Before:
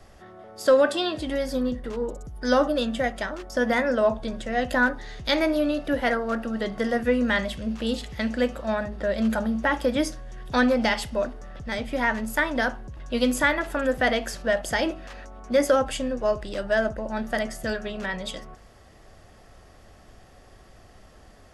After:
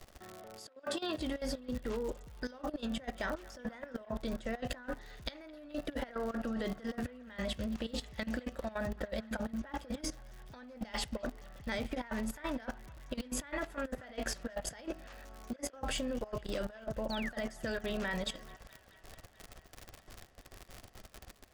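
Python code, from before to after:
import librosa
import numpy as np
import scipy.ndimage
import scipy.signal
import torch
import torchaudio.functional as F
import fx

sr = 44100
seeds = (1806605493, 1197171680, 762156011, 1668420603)

p1 = scipy.signal.sosfilt(scipy.signal.butter(2, 9900.0, 'lowpass', fs=sr, output='sos'), x)
p2 = fx.dmg_crackle(p1, sr, seeds[0], per_s=120.0, level_db=-33.0)
p3 = fx.over_compress(p2, sr, threshold_db=-28.0, ratio=-0.5)
p4 = fx.spec_paint(p3, sr, seeds[1], shape='fall', start_s=17.1, length_s=0.22, low_hz=1400.0, high_hz=4700.0, level_db=-33.0)
p5 = fx.level_steps(p4, sr, step_db=15)
p6 = p5 + fx.echo_wet_bandpass(p5, sr, ms=216, feedback_pct=79, hz=1600.0, wet_db=-21.0, dry=0)
y = p6 * 10.0 ** (-5.5 / 20.0)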